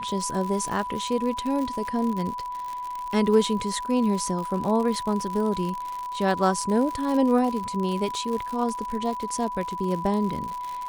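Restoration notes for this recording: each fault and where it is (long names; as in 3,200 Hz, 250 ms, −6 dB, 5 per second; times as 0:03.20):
surface crackle 96 per second −29 dBFS
whistle 990 Hz −30 dBFS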